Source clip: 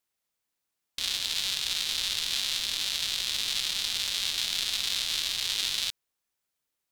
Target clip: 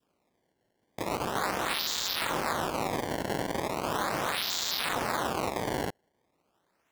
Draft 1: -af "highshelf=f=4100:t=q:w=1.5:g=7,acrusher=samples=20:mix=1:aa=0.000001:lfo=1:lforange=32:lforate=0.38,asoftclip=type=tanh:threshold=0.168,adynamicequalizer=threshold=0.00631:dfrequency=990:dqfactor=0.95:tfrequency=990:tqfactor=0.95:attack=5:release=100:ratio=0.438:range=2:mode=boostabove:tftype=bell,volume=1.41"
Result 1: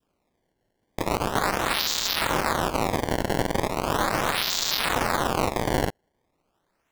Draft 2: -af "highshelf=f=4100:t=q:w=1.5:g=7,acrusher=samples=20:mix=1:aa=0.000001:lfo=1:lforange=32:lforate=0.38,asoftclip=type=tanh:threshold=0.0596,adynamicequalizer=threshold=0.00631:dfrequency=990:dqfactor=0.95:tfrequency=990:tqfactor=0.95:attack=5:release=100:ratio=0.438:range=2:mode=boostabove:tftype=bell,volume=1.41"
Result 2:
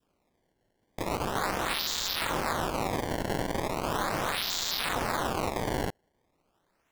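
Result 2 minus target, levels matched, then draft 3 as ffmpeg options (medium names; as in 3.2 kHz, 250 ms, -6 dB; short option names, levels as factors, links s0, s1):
125 Hz band +3.0 dB
-af "highshelf=f=4100:t=q:w=1.5:g=7,acrusher=samples=20:mix=1:aa=0.000001:lfo=1:lforange=32:lforate=0.38,asoftclip=type=tanh:threshold=0.0596,adynamicequalizer=threshold=0.00631:dfrequency=990:dqfactor=0.95:tfrequency=990:tqfactor=0.95:attack=5:release=100:ratio=0.438:range=2:mode=boostabove:tftype=bell,highpass=f=130:p=1,volume=1.41"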